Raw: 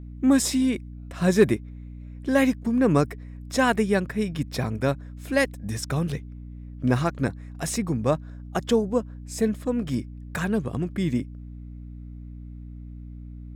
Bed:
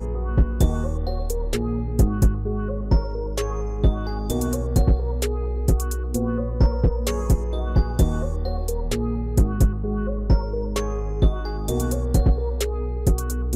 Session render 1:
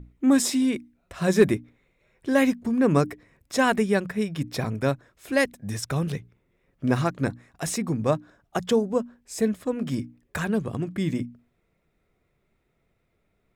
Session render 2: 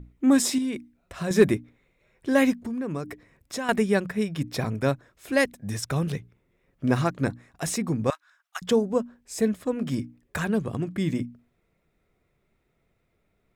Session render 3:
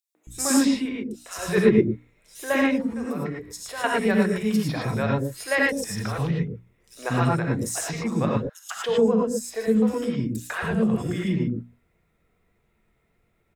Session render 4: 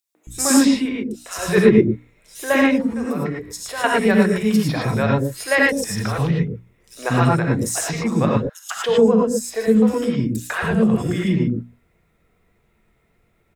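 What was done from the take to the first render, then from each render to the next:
mains-hum notches 60/120/180/240/300 Hz
0:00.58–0:01.31: downward compressor 2.5 to 1, threshold −27 dBFS; 0:02.56–0:03.69: downward compressor 3 to 1, threshold −30 dBFS; 0:08.10–0:08.62: high-pass filter 1,200 Hz 24 dB per octave
three-band delay without the direct sound highs, mids, lows 150/270 ms, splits 440/4,700 Hz; reverb whose tail is shaped and stops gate 130 ms rising, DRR −2 dB
level +5.5 dB; brickwall limiter −1 dBFS, peak gain reduction 1.5 dB

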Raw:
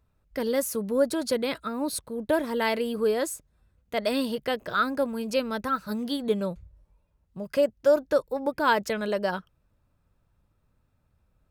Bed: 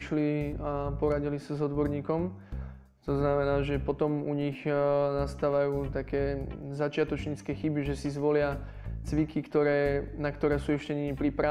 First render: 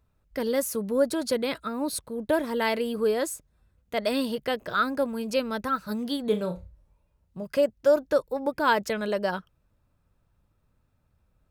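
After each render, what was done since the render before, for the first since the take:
0:06.29–0:07.43: flutter between parallel walls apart 5.7 metres, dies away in 0.24 s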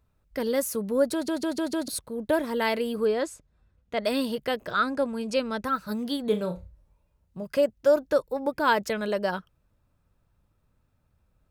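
0:01.13: stutter in place 0.15 s, 5 plays
0:03.05–0:04.04: high-frequency loss of the air 71 metres
0:04.71–0:05.64: low-pass filter 10,000 Hz 24 dB per octave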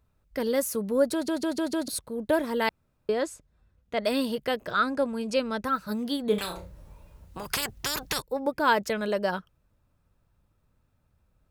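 0:02.69–0:03.09: fill with room tone
0:06.38–0:08.22: every bin compressed towards the loudest bin 10 to 1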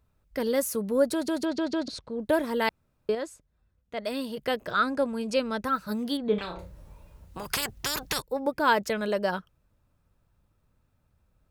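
0:01.45–0:02.21: low-pass filter 5,800 Hz 24 dB per octave
0:03.15–0:04.37: clip gain −5.5 dB
0:06.17–0:06.59: high-frequency loss of the air 220 metres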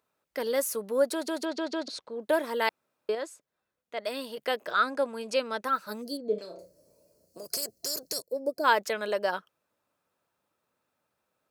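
high-pass filter 400 Hz 12 dB per octave
0:06.02–0:08.64: gain on a spectral selection 700–4,100 Hz −19 dB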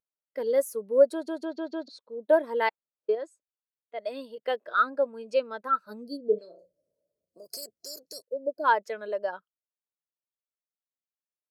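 speech leveller within 5 dB 2 s
every bin expanded away from the loudest bin 1.5 to 1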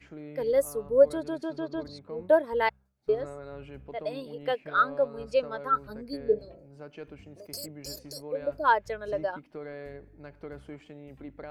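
mix in bed −15 dB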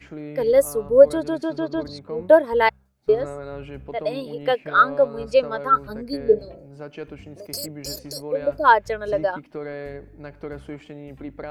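level +8 dB
brickwall limiter −2 dBFS, peak gain reduction 1 dB

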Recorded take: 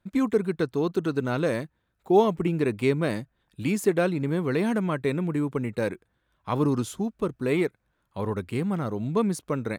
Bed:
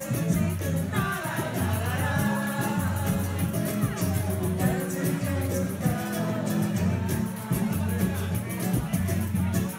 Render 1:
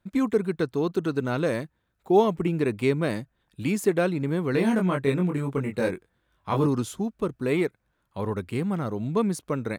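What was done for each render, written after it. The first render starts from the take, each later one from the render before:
0:04.52–0:06.67: double-tracking delay 22 ms −3 dB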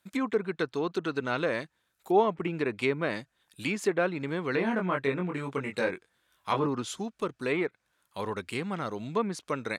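treble cut that deepens with the level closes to 1,800 Hz, closed at −19.5 dBFS
spectral tilt +3.5 dB per octave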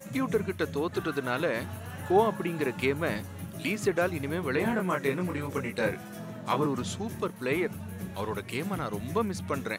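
mix in bed −12.5 dB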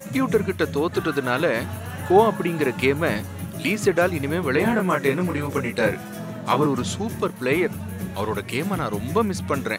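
level +7.5 dB

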